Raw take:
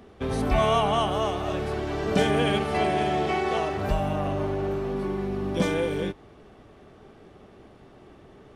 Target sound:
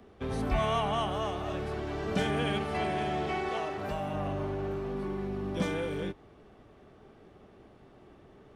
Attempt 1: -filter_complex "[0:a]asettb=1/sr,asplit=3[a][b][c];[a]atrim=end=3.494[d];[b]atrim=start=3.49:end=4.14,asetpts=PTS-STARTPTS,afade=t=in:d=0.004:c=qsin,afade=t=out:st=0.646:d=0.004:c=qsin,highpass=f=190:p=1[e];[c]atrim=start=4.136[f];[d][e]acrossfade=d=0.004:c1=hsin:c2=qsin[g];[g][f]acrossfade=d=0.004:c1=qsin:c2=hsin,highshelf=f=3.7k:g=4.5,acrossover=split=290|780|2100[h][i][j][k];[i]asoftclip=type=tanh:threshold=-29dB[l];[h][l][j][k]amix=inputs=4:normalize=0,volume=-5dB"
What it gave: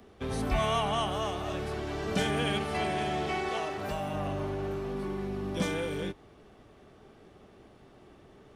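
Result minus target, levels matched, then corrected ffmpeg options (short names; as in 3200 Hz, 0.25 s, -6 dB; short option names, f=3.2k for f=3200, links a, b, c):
8000 Hz band +6.0 dB
-filter_complex "[0:a]asettb=1/sr,asplit=3[a][b][c];[a]atrim=end=3.494[d];[b]atrim=start=3.49:end=4.14,asetpts=PTS-STARTPTS,afade=t=in:d=0.004:c=qsin,afade=t=out:st=0.646:d=0.004:c=qsin,highpass=f=190:p=1[e];[c]atrim=start=4.136[f];[d][e]acrossfade=d=0.004:c1=hsin:c2=qsin[g];[g][f]acrossfade=d=0.004:c1=qsin:c2=hsin,highshelf=f=3.7k:g=-3.5,acrossover=split=290|780|2100[h][i][j][k];[i]asoftclip=type=tanh:threshold=-29dB[l];[h][l][j][k]amix=inputs=4:normalize=0,volume=-5dB"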